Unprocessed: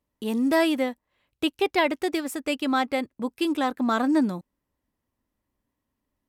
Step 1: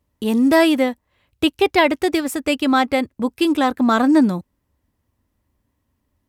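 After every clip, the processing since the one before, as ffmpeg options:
-af "equalizer=f=80:t=o:w=1.3:g=10,volume=7dB"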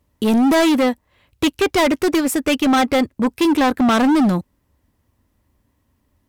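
-af "asoftclip=type=hard:threshold=-18dB,volume=5.5dB"

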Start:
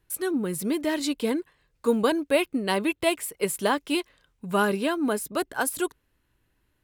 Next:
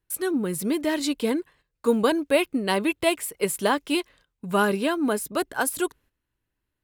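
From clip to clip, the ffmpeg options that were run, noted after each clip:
-af "agate=range=-12dB:threshold=-54dB:ratio=16:detection=peak,volume=1.5dB"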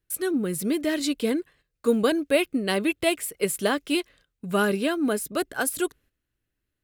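-af "equalizer=f=940:w=3.6:g=-10"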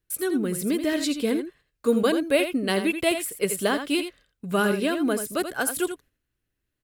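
-af "aecho=1:1:83:0.355"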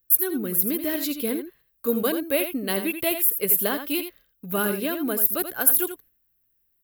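-af "aexciter=amount=15.2:drive=7:freq=12k,volume=-3dB"

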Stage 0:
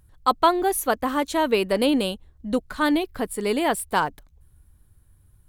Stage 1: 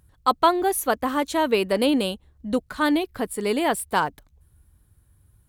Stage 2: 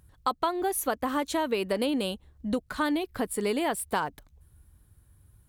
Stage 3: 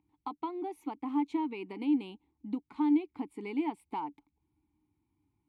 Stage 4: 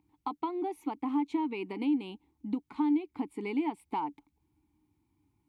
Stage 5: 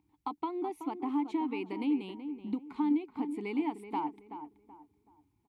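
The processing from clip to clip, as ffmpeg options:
-af "highpass=42"
-af "acompressor=threshold=-25dB:ratio=4"
-filter_complex "[0:a]asplit=3[a][b][c];[a]bandpass=f=300:t=q:w=8,volume=0dB[d];[b]bandpass=f=870:t=q:w=8,volume=-6dB[e];[c]bandpass=f=2.24k:t=q:w=8,volume=-9dB[f];[d][e][f]amix=inputs=3:normalize=0,volume=3.5dB"
-af "acompressor=threshold=-32dB:ratio=2,volume=4dB"
-filter_complex "[0:a]asplit=2[a][b];[b]adelay=378,lowpass=f=1.7k:p=1,volume=-9.5dB,asplit=2[c][d];[d]adelay=378,lowpass=f=1.7k:p=1,volume=0.33,asplit=2[e][f];[f]adelay=378,lowpass=f=1.7k:p=1,volume=0.33,asplit=2[g][h];[h]adelay=378,lowpass=f=1.7k:p=1,volume=0.33[i];[a][c][e][g][i]amix=inputs=5:normalize=0,volume=-1.5dB"

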